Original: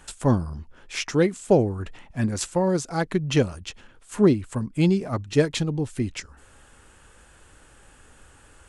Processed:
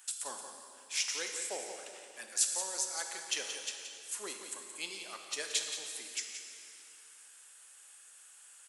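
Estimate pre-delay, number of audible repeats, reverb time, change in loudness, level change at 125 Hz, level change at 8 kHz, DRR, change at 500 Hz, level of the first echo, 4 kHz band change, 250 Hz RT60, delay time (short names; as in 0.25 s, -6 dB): 20 ms, 1, 2.7 s, -12.0 dB, under -40 dB, +3.5 dB, 2.5 dB, -23.5 dB, -9.0 dB, -2.0 dB, 2.7 s, 0.175 s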